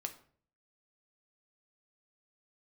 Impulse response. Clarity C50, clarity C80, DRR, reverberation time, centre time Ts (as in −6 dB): 13.0 dB, 17.0 dB, 5.5 dB, 0.50 s, 8 ms